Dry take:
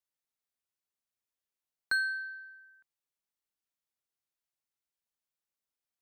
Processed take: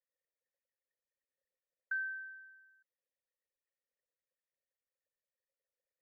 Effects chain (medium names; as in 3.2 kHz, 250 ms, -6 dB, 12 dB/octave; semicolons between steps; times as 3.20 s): resonances exaggerated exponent 3; cascade formant filter e; static phaser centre 920 Hz, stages 6; trim +13 dB